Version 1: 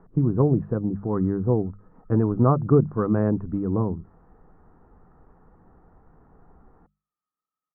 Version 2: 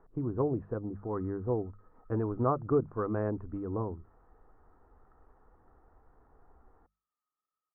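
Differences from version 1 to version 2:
speech -5.5 dB; master: add bell 170 Hz -13.5 dB 1 oct

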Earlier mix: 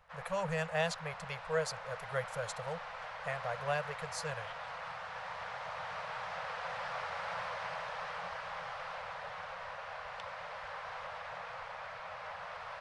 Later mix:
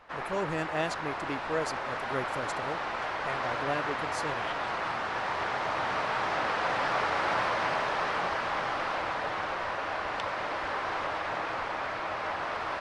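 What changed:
background +10.5 dB; master: remove elliptic band-stop 180–480 Hz, stop band 40 dB

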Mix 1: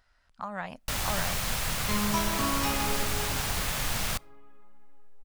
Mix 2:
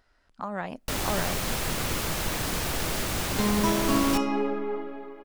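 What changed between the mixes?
second sound: entry +1.50 s; master: add bell 340 Hz +12 dB 1.3 oct

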